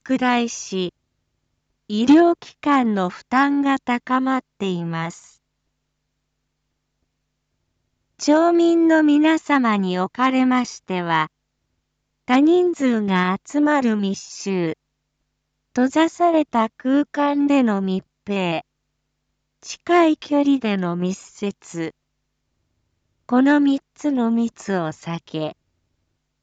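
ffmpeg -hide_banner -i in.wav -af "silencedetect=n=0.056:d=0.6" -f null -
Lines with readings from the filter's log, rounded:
silence_start: 0.89
silence_end: 1.90 | silence_duration: 1.02
silence_start: 5.10
silence_end: 8.21 | silence_duration: 3.11
silence_start: 11.26
silence_end: 12.29 | silence_duration: 1.04
silence_start: 14.73
silence_end: 15.76 | silence_duration: 1.03
silence_start: 18.59
silence_end: 19.70 | silence_duration: 1.10
silence_start: 21.89
silence_end: 23.29 | silence_duration: 1.40
silence_start: 25.50
silence_end: 26.42 | silence_duration: 0.92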